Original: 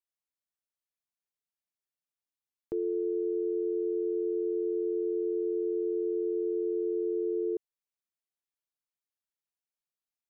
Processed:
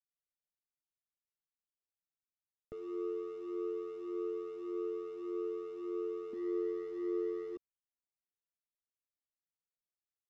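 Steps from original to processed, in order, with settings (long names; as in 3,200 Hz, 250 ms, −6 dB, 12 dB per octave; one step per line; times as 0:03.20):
adaptive Wiener filter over 41 samples
0:06.33–0:07.56: hollow resonant body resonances 230 Hz, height 13 dB, ringing for 40 ms
downsampling to 16,000 Hz
in parallel at −10 dB: hard clipping −38.5 dBFS, distortion −6 dB
on the sum: flanger whose copies keep moving one way rising 1.7 Hz
level −3 dB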